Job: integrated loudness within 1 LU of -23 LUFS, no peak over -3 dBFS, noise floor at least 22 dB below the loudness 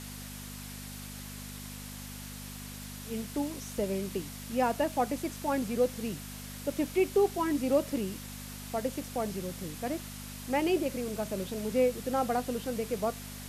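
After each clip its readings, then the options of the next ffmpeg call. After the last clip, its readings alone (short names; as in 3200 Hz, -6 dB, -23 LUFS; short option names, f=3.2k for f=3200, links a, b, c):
hum 50 Hz; harmonics up to 250 Hz; hum level -42 dBFS; noise floor -43 dBFS; noise floor target -55 dBFS; loudness -33.0 LUFS; peak -15.0 dBFS; loudness target -23.0 LUFS
-> -af "bandreject=f=50:t=h:w=4,bandreject=f=100:t=h:w=4,bandreject=f=150:t=h:w=4,bandreject=f=200:t=h:w=4,bandreject=f=250:t=h:w=4"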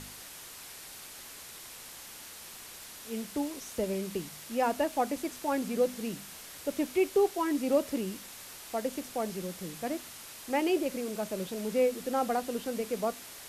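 hum none; noise floor -47 dBFS; noise floor target -54 dBFS
-> -af "afftdn=nr=7:nf=-47"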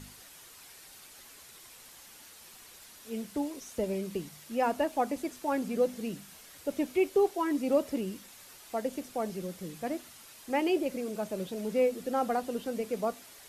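noise floor -53 dBFS; noise floor target -55 dBFS
-> -af "afftdn=nr=6:nf=-53"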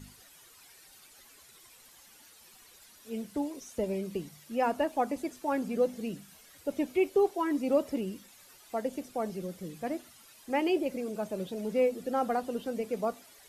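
noise floor -57 dBFS; loudness -32.5 LUFS; peak -15.5 dBFS; loudness target -23.0 LUFS
-> -af "volume=9.5dB"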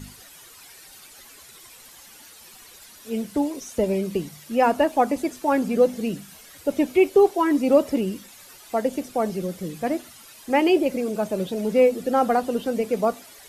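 loudness -23.0 LUFS; peak -6.0 dBFS; noise floor -47 dBFS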